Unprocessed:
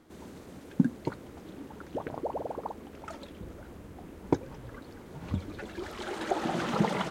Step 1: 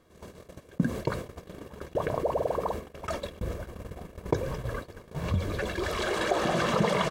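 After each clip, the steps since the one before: comb 1.8 ms, depth 57%; gate -42 dBFS, range -42 dB; fast leveller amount 50%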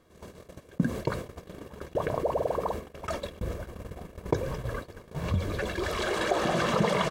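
nothing audible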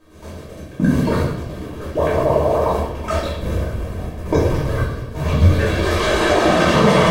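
reverb RT60 0.80 s, pre-delay 3 ms, DRR -9 dB; gain +2.5 dB

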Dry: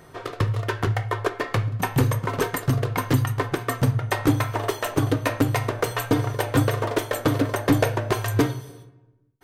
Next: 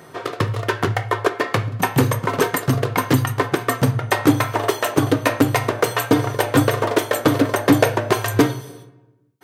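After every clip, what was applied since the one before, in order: HPF 140 Hz 12 dB/oct; gain +6 dB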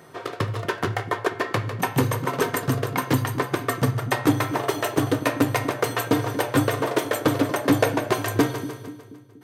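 split-band echo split 350 Hz, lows 0.24 s, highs 0.15 s, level -10 dB; gain -5 dB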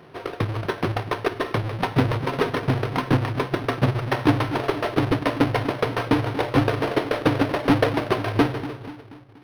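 half-waves squared off; decimation joined by straight lines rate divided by 6×; gain -3.5 dB

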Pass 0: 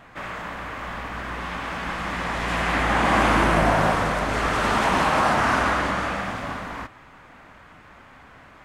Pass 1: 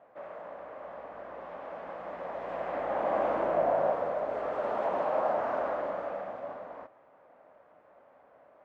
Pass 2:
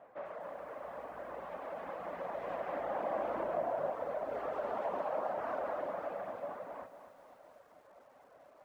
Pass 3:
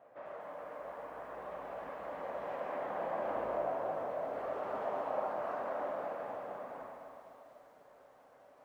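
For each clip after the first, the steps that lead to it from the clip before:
band-pass 580 Hz, Q 3.9
reverb removal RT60 0.89 s; compressor 2:1, threshold -39 dBFS, peak gain reduction 8.5 dB; lo-fi delay 0.25 s, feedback 55%, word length 11-bit, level -10 dB; gain +1 dB
plate-style reverb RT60 2.3 s, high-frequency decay 0.9×, DRR -2 dB; gain -4.5 dB

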